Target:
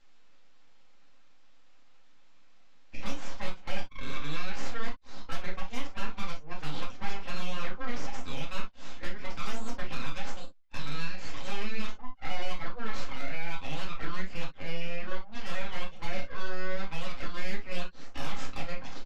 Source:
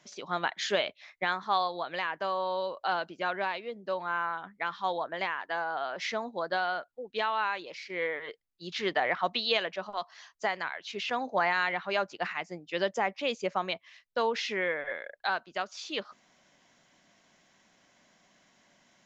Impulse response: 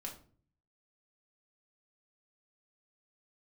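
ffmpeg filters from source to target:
-filter_complex "[0:a]areverse,agate=range=0.282:threshold=0.00126:ratio=16:detection=peak,equalizer=f=320:t=o:w=2.7:g=-7,aecho=1:1:7.4:0.77,acompressor=threshold=0.00562:ratio=5,aresample=16000,aeval=exprs='abs(val(0))':c=same,aresample=44100,adynamicsmooth=sensitivity=6:basefreq=4700,asoftclip=type=hard:threshold=0.0112[s0];[1:a]atrim=start_sample=2205,atrim=end_sample=3087[s1];[s0][s1]afir=irnorm=-1:irlink=0,volume=6.31"

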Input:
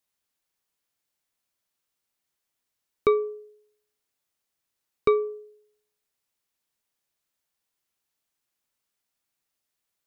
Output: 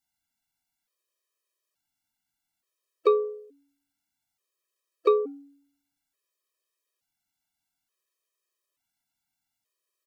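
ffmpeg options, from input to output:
-filter_complex "[0:a]asplit=3[s0][s1][s2];[s1]asetrate=29433,aresample=44100,atempo=1.49831,volume=0.631[s3];[s2]asetrate=52444,aresample=44100,atempo=0.840896,volume=0.2[s4];[s0][s3][s4]amix=inputs=3:normalize=0,afftfilt=real='re*gt(sin(2*PI*0.57*pts/sr)*(1-2*mod(floor(b*sr/1024/330),2)),0)':imag='im*gt(sin(2*PI*0.57*pts/sr)*(1-2*mod(floor(b*sr/1024/330),2)),0)':win_size=1024:overlap=0.75"

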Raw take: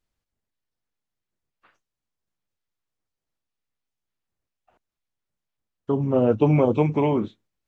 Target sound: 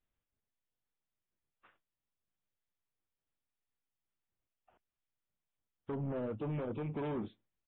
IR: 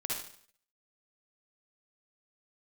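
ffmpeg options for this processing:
-af "alimiter=limit=0.126:level=0:latency=1:release=250,aresample=8000,asoftclip=type=tanh:threshold=0.0473,aresample=44100,volume=0.501" -ar 24000 -c:a libmp3lame -b:a 24k

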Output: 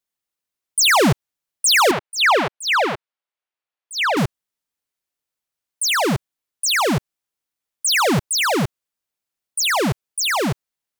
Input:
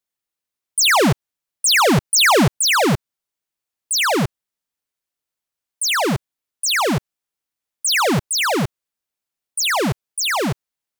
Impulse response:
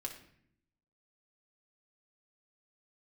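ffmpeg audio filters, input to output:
-filter_complex "[0:a]asettb=1/sr,asplit=3[s0][s1][s2];[s0]atrim=end=1.914[s3];[s1]atrim=start=1.91:end=4.17,asetpts=PTS-STARTPTS,afade=t=in:d=0.004:c=qsin,afade=t=out:st=2.256:d=0.004:c=qsin,acrossover=split=400 3800:gain=0.126 1 0.141[s4][s5][s6];[s4][s5][s6]amix=inputs=3:normalize=0[s7];[s2]atrim=start=4.166[s8];[s3][s7]acrossfade=d=0.004:c1=hsin:c2=qsin[s9];[s9][s8]acrossfade=d=0.004:c1=qsin:c2=hsin"

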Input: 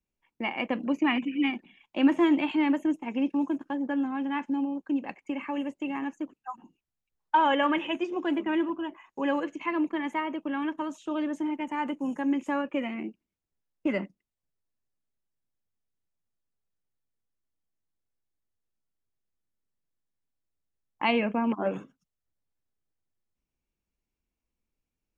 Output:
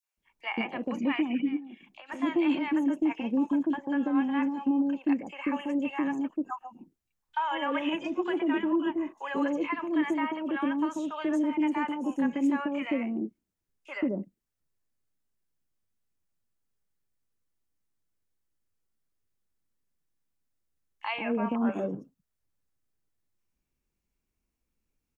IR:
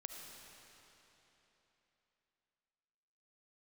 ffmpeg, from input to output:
-filter_complex "[0:a]alimiter=limit=0.075:level=0:latency=1:release=143,asplit=3[s0][s1][s2];[s0]afade=t=out:st=1.38:d=0.02[s3];[s1]acompressor=threshold=0.00708:ratio=6,afade=t=in:st=1.38:d=0.02,afade=t=out:st=2.05:d=0.02[s4];[s2]afade=t=in:st=2.05:d=0.02[s5];[s3][s4][s5]amix=inputs=3:normalize=0,acrossover=split=690|3400[s6][s7][s8];[s7]adelay=30[s9];[s6]adelay=170[s10];[s10][s9][s8]amix=inputs=3:normalize=0,volume=1.58"

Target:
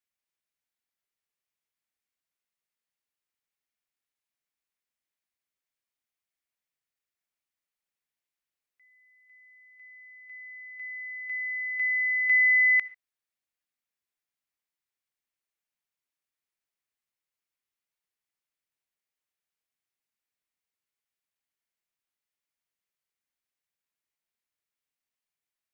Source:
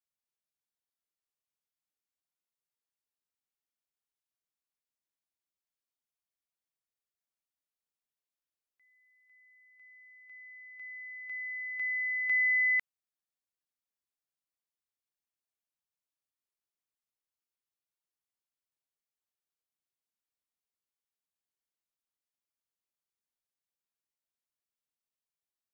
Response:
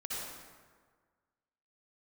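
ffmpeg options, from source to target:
-filter_complex "[0:a]equalizer=f=2100:t=o:w=0.93:g=6.5,asplit=2[s0][s1];[1:a]atrim=start_sample=2205,atrim=end_sample=6615[s2];[s1][s2]afir=irnorm=-1:irlink=0,volume=0.106[s3];[s0][s3]amix=inputs=2:normalize=0"

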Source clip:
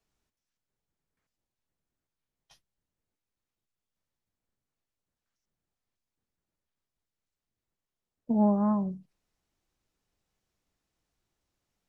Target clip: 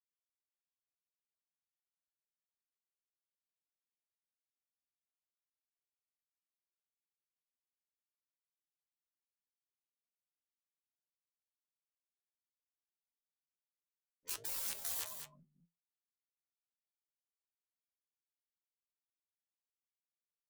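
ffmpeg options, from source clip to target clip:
-filter_complex "[0:a]afftfilt=real='re*gte(hypot(re,im),0.126)':imag='im*gte(hypot(re,im),0.126)':win_size=1024:overlap=0.75,equalizer=f=730:w=4.3:g=-8.5,aeval=exprs='(mod(11.9*val(0)+1,2)-1)/11.9':c=same,asplit=2[s0][s1];[s1]adelay=13,volume=0.631[s2];[s0][s2]amix=inputs=2:normalize=0,acompressor=threshold=0.0398:ratio=3,tiltshelf=f=1200:g=-6.5,afftfilt=real='re*lt(hypot(re,im),0.0178)':imag='im*lt(hypot(re,im),0.0178)':win_size=1024:overlap=0.75,atempo=0.58,asplit=2[s3][s4];[s4]aecho=0:1:209:0.398[s5];[s3][s5]amix=inputs=2:normalize=0,flanger=delay=7.3:depth=4.5:regen=68:speed=1.3:shape=sinusoidal,volume=1.78"

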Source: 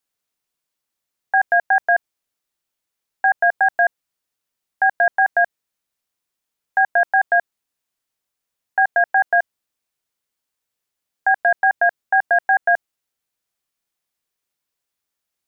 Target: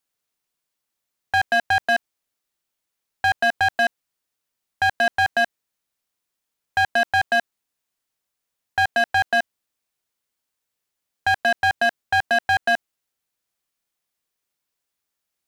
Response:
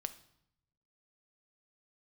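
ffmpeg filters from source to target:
-af "asoftclip=type=hard:threshold=0.188"

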